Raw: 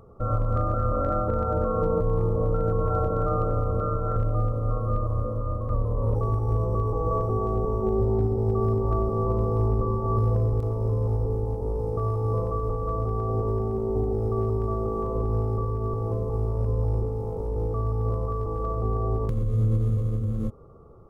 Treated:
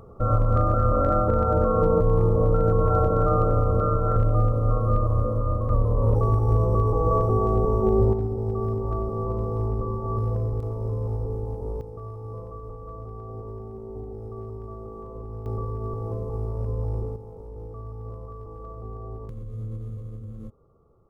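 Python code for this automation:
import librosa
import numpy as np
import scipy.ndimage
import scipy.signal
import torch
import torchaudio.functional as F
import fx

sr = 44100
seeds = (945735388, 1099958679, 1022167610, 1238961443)

y = fx.gain(x, sr, db=fx.steps((0.0, 4.0), (8.13, -3.0), (11.81, -11.0), (15.46, -3.0), (17.16, -11.0)))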